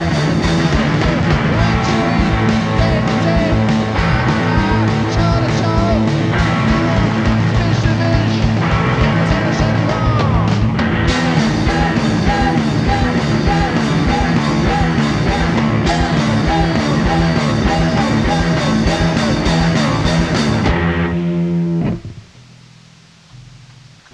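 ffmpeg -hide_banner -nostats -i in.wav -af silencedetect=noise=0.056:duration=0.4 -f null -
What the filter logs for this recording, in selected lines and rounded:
silence_start: 22.19
silence_end: 24.13 | silence_duration: 1.94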